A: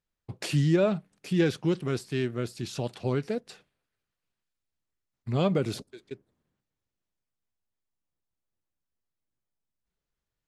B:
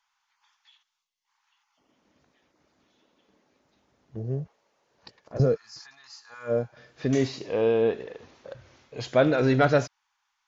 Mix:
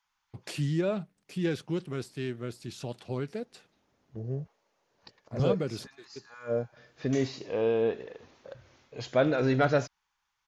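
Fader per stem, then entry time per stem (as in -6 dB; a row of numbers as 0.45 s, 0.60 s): -5.5 dB, -4.0 dB; 0.05 s, 0.00 s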